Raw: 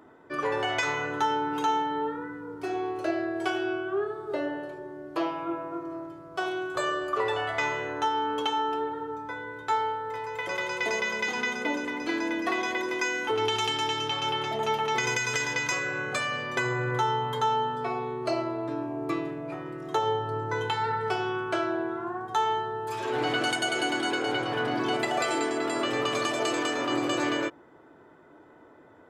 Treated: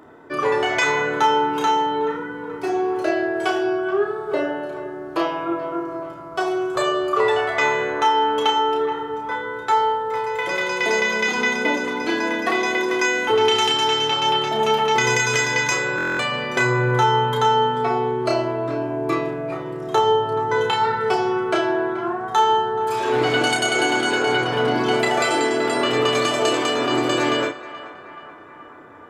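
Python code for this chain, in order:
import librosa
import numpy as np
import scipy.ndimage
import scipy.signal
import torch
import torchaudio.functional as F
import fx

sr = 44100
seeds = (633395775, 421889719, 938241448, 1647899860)

y = fx.doubler(x, sr, ms=32.0, db=-5.0)
y = fx.echo_banded(y, sr, ms=429, feedback_pct=70, hz=1200.0, wet_db=-13.5)
y = fx.buffer_glitch(y, sr, at_s=(15.96,), block=1024, repeats=9)
y = y * 10.0 ** (7.0 / 20.0)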